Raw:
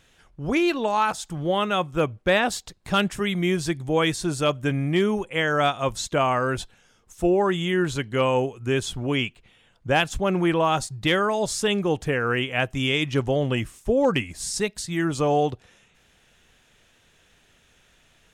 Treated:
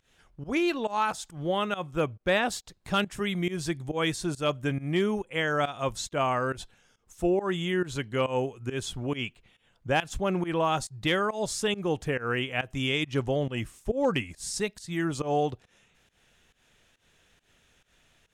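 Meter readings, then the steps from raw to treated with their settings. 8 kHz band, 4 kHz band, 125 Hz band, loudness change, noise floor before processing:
-5.0 dB, -5.0 dB, -5.5 dB, -5.5 dB, -61 dBFS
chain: volume shaper 138 bpm, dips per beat 1, -19 dB, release 155 ms; trim -4.5 dB

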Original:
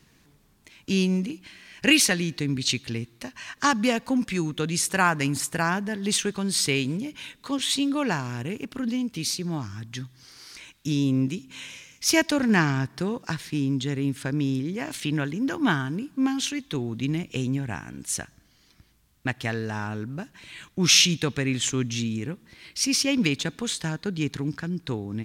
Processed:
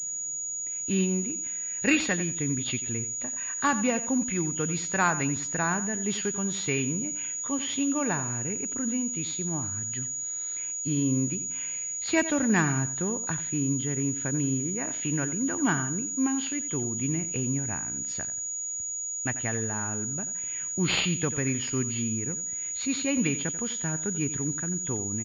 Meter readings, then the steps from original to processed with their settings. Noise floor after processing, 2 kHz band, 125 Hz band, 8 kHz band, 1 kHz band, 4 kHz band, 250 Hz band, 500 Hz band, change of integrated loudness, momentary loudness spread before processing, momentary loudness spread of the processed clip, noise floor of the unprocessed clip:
-34 dBFS, -4.0 dB, -3.0 dB, +5.0 dB, -3.0 dB, -10.5 dB, -3.0 dB, -2.5 dB, -2.0 dB, 15 LU, 6 LU, -61 dBFS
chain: knee-point frequency compression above 2.6 kHz 1.5:1; feedback delay 89 ms, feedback 25%, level -13.5 dB; class-D stage that switches slowly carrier 6.8 kHz; trim -3 dB

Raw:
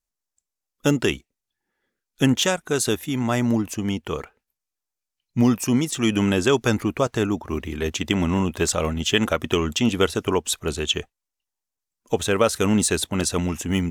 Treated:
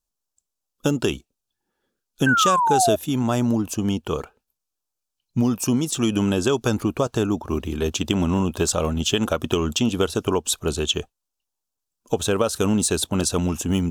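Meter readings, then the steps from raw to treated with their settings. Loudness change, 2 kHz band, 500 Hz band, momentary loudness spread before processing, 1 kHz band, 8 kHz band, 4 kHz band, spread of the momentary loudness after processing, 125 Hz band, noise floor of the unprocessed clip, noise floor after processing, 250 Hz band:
+0.5 dB, -1.0 dB, 0.0 dB, 7 LU, +5.5 dB, +1.0 dB, -0.5 dB, 8 LU, +0.5 dB, under -85 dBFS, -83 dBFS, 0.0 dB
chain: peaking EQ 2 kHz -14.5 dB 0.42 oct; compression 4:1, threshold -20 dBFS, peak gain reduction 6.5 dB; painted sound fall, 2.26–2.96 s, 610–1600 Hz -22 dBFS; trim +3 dB

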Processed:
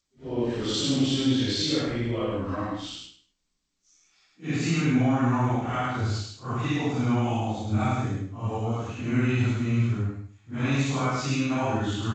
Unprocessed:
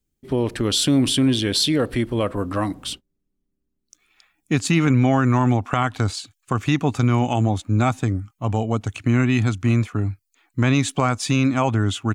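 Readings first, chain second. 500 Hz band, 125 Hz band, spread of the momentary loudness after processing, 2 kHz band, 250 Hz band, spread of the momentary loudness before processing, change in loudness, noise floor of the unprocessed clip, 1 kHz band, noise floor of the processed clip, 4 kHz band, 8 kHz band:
-6.0 dB, -6.0 dB, 9 LU, -5.5 dB, -5.5 dB, 9 LU, -6.0 dB, -76 dBFS, -5.5 dB, -75 dBFS, -6.0 dB, -9.0 dB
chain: phase randomisation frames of 200 ms; feedback delay 103 ms, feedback 24%, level -3.5 dB; trim -7.5 dB; G.722 64 kbps 16 kHz

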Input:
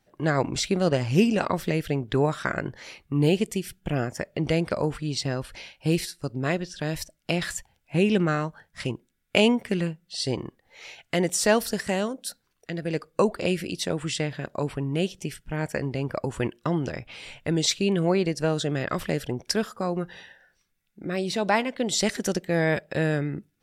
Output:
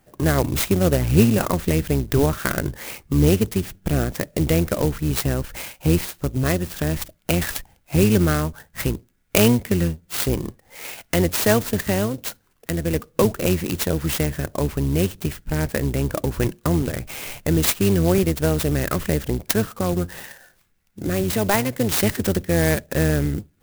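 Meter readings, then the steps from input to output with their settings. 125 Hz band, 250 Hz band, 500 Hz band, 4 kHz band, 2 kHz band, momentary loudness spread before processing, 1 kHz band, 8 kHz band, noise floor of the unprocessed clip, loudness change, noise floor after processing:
+7.5 dB, +5.0 dB, +3.5 dB, +1.0 dB, +2.5 dB, 11 LU, +1.5 dB, +5.5 dB, -72 dBFS, +5.0 dB, -62 dBFS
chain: octave divider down 1 oct, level -3 dB; low-pass 8.6 kHz 12 dB/octave; dynamic bell 850 Hz, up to -4 dB, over -38 dBFS, Q 1.1; in parallel at +1 dB: compression, threshold -34 dBFS, peak gain reduction 19 dB; on the sum: sampling jitter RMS 0.065 ms; trim +3 dB

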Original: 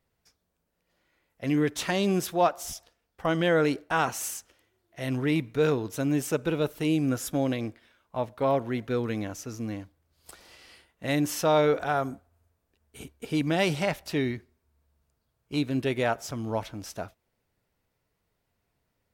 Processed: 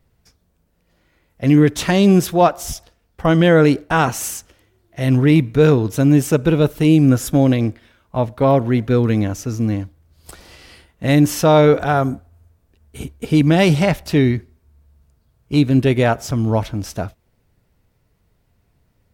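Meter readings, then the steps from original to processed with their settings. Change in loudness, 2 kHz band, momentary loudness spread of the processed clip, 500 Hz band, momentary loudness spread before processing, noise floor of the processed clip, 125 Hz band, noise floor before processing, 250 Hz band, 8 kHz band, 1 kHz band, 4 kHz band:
+12.0 dB, +8.0 dB, 14 LU, +10.5 dB, 14 LU, -64 dBFS, +16.5 dB, -78 dBFS, +13.0 dB, +8.0 dB, +9.0 dB, +8.0 dB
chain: bass shelf 240 Hz +11.5 dB; trim +8 dB

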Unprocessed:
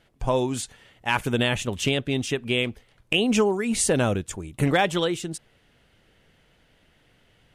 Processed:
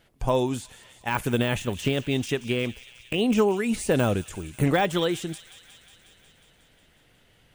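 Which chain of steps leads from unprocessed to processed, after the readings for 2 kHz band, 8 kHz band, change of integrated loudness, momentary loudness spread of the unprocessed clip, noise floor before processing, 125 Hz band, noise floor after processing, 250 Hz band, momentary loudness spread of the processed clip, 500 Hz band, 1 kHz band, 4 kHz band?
-3.5 dB, -7.5 dB, -1.5 dB, 11 LU, -63 dBFS, 0.0 dB, -61 dBFS, 0.0 dB, 13 LU, -0.5 dB, -1.0 dB, -5.0 dB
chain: de-esser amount 80%; treble shelf 11 kHz +10 dB; feedback echo behind a high-pass 181 ms, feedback 75%, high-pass 2.5 kHz, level -13.5 dB

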